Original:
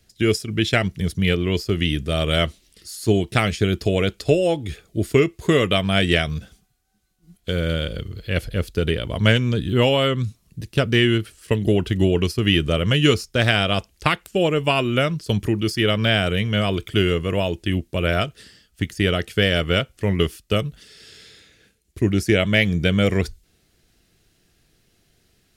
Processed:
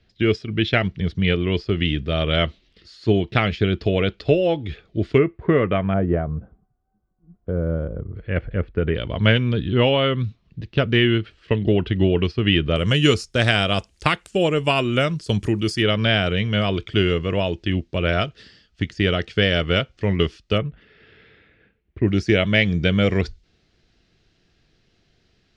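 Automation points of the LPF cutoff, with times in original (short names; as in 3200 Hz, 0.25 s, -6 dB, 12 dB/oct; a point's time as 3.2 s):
LPF 24 dB/oct
4000 Hz
from 5.18 s 2000 Hz
from 5.94 s 1100 Hz
from 8.15 s 2100 Hz
from 8.95 s 3800 Hz
from 12.76 s 9100 Hz
from 15.82 s 5300 Hz
from 20.58 s 2500 Hz
from 22.08 s 5300 Hz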